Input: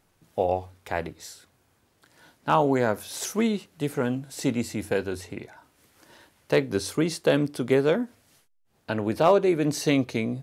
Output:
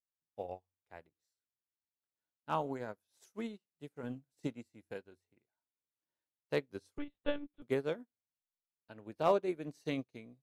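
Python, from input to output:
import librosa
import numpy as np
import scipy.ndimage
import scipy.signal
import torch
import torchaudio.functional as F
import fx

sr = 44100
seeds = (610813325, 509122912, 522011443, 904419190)

y = fx.low_shelf(x, sr, hz=470.0, db=5.0, at=(4.03, 4.47))
y = fx.lpc_monotone(y, sr, seeds[0], pitch_hz=290.0, order=10, at=(6.98, 7.62))
y = fx.upward_expand(y, sr, threshold_db=-40.0, expansion=2.5)
y = y * librosa.db_to_amplitude(-8.5)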